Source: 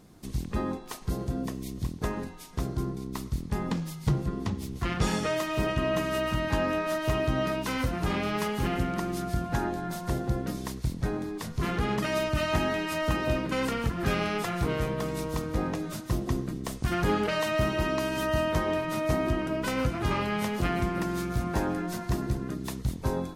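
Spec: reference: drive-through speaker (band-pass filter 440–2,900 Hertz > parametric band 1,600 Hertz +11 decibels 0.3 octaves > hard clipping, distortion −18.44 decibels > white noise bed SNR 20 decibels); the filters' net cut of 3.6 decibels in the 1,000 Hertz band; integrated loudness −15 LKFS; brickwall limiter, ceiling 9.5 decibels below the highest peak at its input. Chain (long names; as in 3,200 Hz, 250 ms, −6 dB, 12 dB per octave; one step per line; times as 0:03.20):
parametric band 1,000 Hz −6.5 dB
brickwall limiter −22.5 dBFS
band-pass filter 440–2,900 Hz
parametric band 1,600 Hz +11 dB 0.3 octaves
hard clipping −27.5 dBFS
white noise bed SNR 20 dB
level +21 dB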